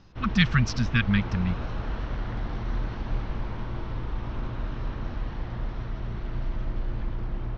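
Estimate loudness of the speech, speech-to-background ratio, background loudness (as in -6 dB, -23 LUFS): -25.5 LUFS, 9.0 dB, -34.5 LUFS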